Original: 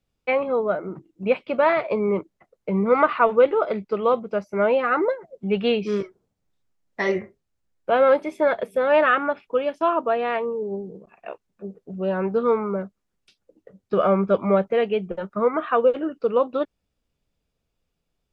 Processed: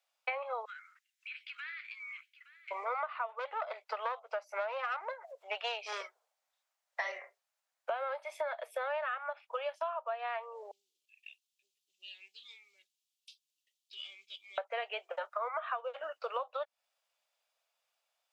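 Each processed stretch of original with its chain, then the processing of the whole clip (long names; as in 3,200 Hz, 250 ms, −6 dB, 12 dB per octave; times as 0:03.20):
0:00.65–0:02.71: Butterworth high-pass 1,600 Hz 48 dB per octave + downward compressor, threshold −44 dBFS + single-tap delay 868 ms −17 dB
0:03.39–0:05.93: tube saturation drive 14 dB, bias 0.5 + upward compression, threshold −36 dBFS
0:10.71–0:14.58: inverse Chebyshev band-stop filter 470–1,500 Hz, stop band 50 dB + parametric band 3,200 Hz +3 dB 0.89 octaves
whole clip: Butterworth high-pass 600 Hz 48 dB per octave; downward compressor 16 to 1, threshold −35 dBFS; level +2 dB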